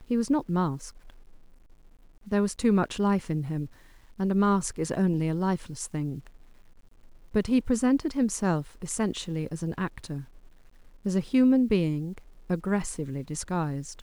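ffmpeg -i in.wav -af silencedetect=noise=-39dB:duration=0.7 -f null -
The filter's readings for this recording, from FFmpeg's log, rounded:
silence_start: 1.10
silence_end: 2.27 | silence_duration: 1.17
silence_start: 6.27
silence_end: 7.34 | silence_duration: 1.08
silence_start: 10.24
silence_end: 11.05 | silence_duration: 0.81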